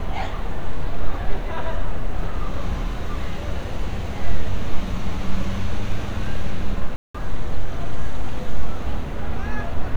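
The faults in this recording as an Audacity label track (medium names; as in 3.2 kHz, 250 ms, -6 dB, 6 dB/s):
6.960000	7.140000	dropout 185 ms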